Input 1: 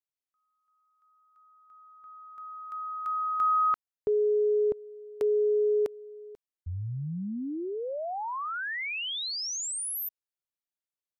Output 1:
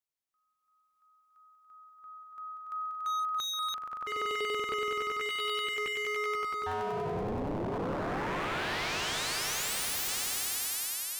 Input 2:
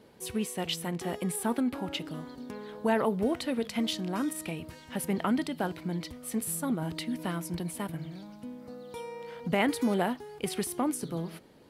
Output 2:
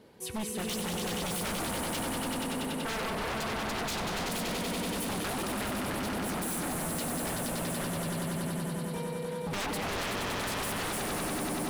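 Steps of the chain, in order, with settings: echo with a slow build-up 95 ms, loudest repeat 5, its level -6 dB; wavefolder -28.5 dBFS

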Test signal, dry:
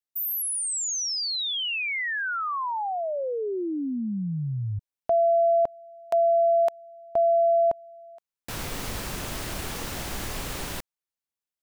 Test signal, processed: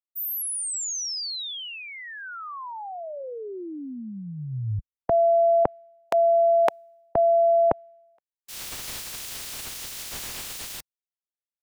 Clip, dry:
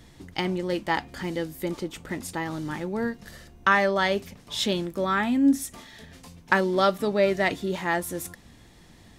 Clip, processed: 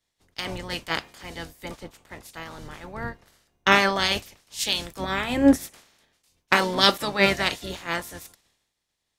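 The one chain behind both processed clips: spectral peaks clipped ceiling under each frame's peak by 20 dB; three bands expanded up and down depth 100%; trim -2 dB

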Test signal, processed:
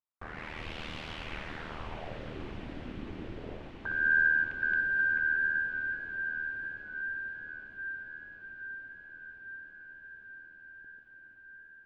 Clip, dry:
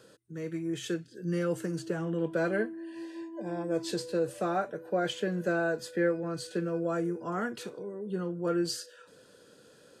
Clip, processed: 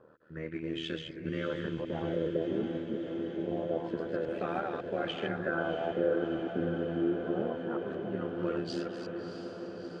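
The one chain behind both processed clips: chunks repeated in reverse 185 ms, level -4.5 dB; compression, threshold -27 dBFS; short-mantissa float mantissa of 4-bit; AM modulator 78 Hz, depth 65%; LFO low-pass sine 0.26 Hz 280–3100 Hz; echo that smears into a reverb 661 ms, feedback 75%, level -8.5 dB

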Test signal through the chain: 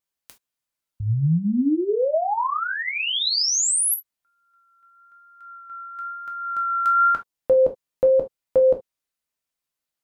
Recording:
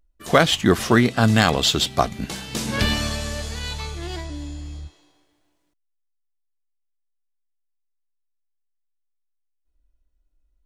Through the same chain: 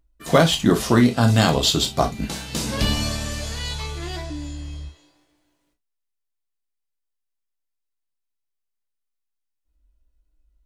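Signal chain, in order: vibrato 1 Hz 13 cents; dynamic bell 1.9 kHz, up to -7 dB, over -35 dBFS, Q 0.96; gated-style reverb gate 90 ms falling, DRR 3 dB

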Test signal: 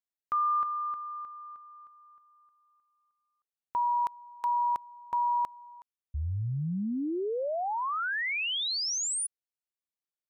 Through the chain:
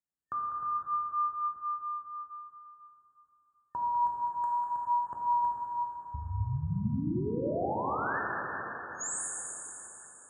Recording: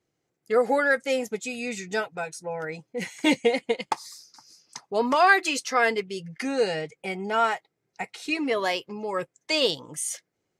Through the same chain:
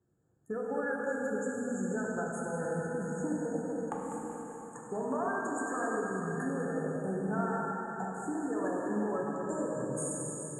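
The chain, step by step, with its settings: chunks repeated in reverse 107 ms, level -14 dB; bass shelf 230 Hz +12 dB; FFT band-reject 1.8–6.6 kHz; high-pass 45 Hz 24 dB/octave; peaking EQ 650 Hz -2.5 dB 0.77 oct; compression 10:1, threshold -31 dBFS; vibrato 2 Hz 6 cents; low-pass 9.1 kHz 24 dB/octave; two-band feedback delay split 550 Hz, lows 306 ms, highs 198 ms, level -10 dB; plate-style reverb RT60 4.1 s, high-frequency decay 0.75×, DRR -3.5 dB; trim -4 dB

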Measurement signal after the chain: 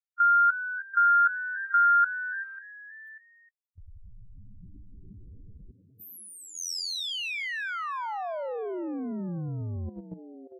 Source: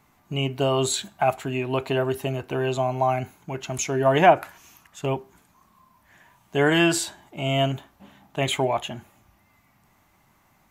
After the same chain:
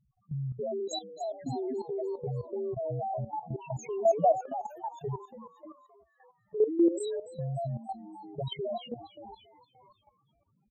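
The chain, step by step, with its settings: loudest bins only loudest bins 1; frequency-shifting echo 288 ms, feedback 49%, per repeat +91 Hz, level -11.5 dB; level held to a coarse grid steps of 13 dB; trim +6 dB

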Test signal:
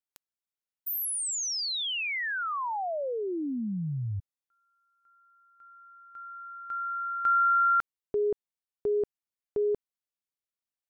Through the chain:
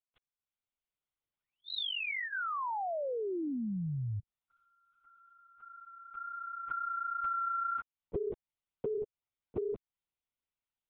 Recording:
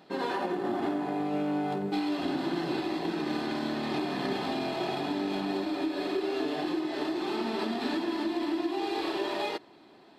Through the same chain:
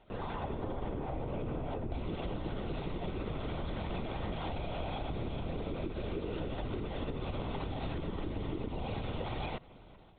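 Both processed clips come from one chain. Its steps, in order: level rider gain up to 7.5 dB; LPC vocoder at 8 kHz whisper; band-stop 1.7 kHz, Q 6.5; compression 5:1, threshold -28 dBFS; trim -6 dB

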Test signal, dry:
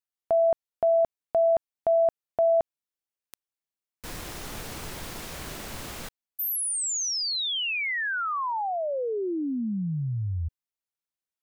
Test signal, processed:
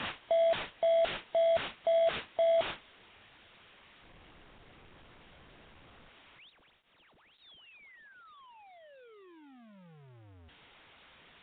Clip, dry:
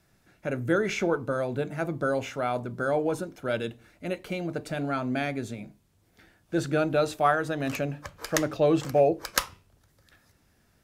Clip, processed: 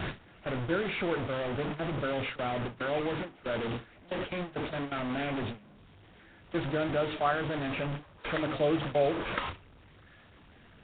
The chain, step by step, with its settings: one-bit delta coder 32 kbps, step -21.5 dBFS; gate with hold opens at -22 dBFS, closes at -25 dBFS, hold 78 ms, range -22 dB; trim -5.5 dB; Nellymoser 16 kbps 8 kHz

